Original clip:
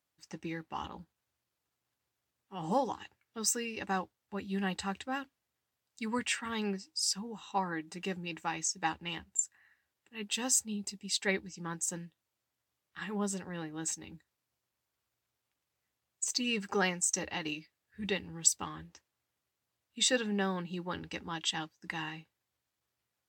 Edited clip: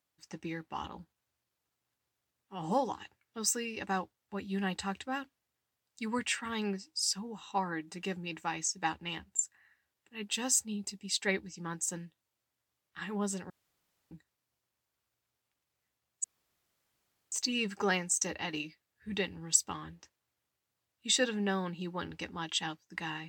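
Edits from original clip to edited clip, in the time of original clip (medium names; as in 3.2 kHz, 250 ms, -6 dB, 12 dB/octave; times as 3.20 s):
13.50–14.11 s: room tone
16.24 s: insert room tone 1.08 s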